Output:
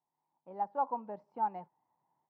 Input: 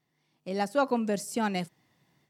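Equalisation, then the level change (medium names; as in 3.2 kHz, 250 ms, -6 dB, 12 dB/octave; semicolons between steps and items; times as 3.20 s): band-pass filter 900 Hz, Q 10; distance through air 190 m; tilt EQ -3.5 dB/octave; +5.0 dB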